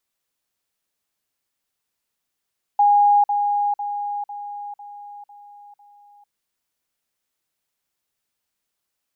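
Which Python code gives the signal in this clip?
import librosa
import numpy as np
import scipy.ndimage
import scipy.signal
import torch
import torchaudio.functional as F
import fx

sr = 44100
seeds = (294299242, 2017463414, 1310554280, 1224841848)

y = fx.level_ladder(sr, hz=820.0, from_db=-11.5, step_db=-6.0, steps=7, dwell_s=0.45, gap_s=0.05)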